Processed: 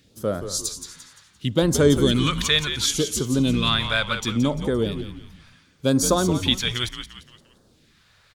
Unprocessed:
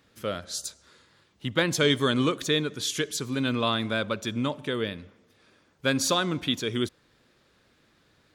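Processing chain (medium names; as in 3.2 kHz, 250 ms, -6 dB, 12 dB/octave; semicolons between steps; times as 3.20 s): phase shifter stages 2, 0.7 Hz, lowest notch 280–2700 Hz; frequency-shifting echo 173 ms, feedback 40%, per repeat -88 Hz, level -9 dB; trim +7 dB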